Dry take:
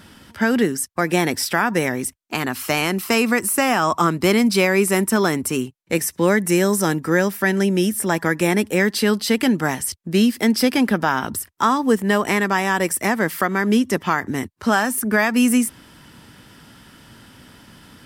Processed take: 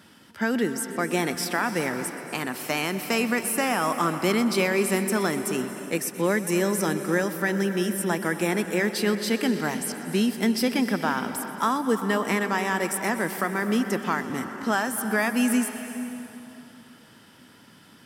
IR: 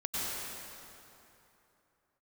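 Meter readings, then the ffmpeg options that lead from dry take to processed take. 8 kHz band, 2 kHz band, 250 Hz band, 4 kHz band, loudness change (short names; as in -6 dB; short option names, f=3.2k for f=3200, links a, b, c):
-6.0 dB, -6.0 dB, -6.0 dB, -6.0 dB, -6.0 dB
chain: -filter_complex "[0:a]highpass=140,asplit=2[a][b];[1:a]atrim=start_sample=2205,adelay=125[c];[b][c]afir=irnorm=-1:irlink=0,volume=-14.5dB[d];[a][d]amix=inputs=2:normalize=0,volume=-6.5dB"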